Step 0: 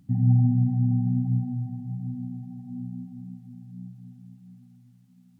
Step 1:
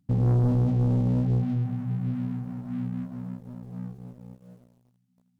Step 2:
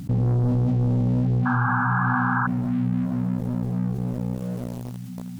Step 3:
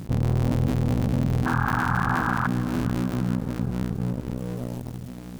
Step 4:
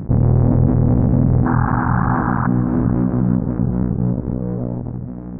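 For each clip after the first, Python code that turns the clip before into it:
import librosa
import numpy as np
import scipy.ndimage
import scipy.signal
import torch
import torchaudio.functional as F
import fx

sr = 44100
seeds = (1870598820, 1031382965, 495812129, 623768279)

y1 = fx.leveller(x, sr, passes=3)
y1 = F.gain(torch.from_numpy(y1), -7.0).numpy()
y2 = fx.spec_paint(y1, sr, seeds[0], shape='noise', start_s=1.45, length_s=1.02, low_hz=750.0, high_hz=1700.0, level_db=-29.0)
y2 = fx.env_flatten(y2, sr, amount_pct=70)
y3 = fx.cycle_switch(y2, sr, every=3, mode='muted')
y3 = fx.echo_feedback(y3, sr, ms=441, feedback_pct=52, wet_db=-17)
y4 = scipy.ndimage.gaussian_filter1d(y3, 6.8, mode='constant')
y4 = F.gain(torch.from_numpy(y4), 9.0).numpy()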